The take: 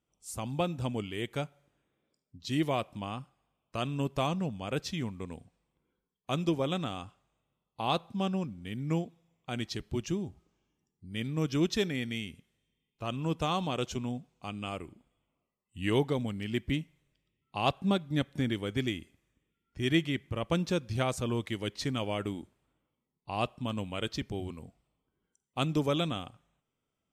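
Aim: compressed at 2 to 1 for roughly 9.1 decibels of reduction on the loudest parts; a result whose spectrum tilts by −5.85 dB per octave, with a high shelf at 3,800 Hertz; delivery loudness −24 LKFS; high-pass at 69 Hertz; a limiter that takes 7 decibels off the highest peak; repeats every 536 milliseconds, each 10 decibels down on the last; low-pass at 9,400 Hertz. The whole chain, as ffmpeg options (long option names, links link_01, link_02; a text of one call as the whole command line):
ffmpeg -i in.wav -af "highpass=69,lowpass=9400,highshelf=frequency=3800:gain=-9,acompressor=threshold=-40dB:ratio=2,alimiter=level_in=5.5dB:limit=-24dB:level=0:latency=1,volume=-5.5dB,aecho=1:1:536|1072|1608|2144:0.316|0.101|0.0324|0.0104,volume=18.5dB" out.wav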